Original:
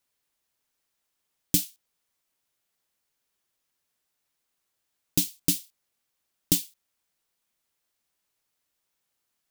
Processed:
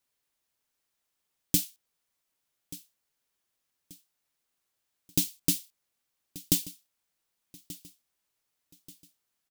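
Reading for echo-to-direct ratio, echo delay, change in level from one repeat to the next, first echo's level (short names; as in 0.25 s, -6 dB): -17.5 dB, 1.183 s, -8.0 dB, -18.0 dB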